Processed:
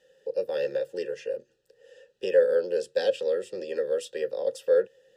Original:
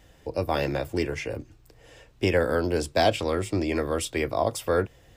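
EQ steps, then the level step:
formant filter e
high-shelf EQ 2,800 Hz +11.5 dB
phaser with its sweep stopped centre 440 Hz, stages 8
+8.5 dB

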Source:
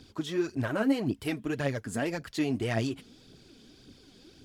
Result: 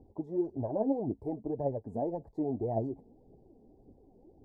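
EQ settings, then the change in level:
elliptic low-pass filter 840 Hz, stop band 40 dB
parametric band 140 Hz −7 dB 1.7 octaves
parametric band 280 Hz −4.5 dB 0.79 octaves
+2.5 dB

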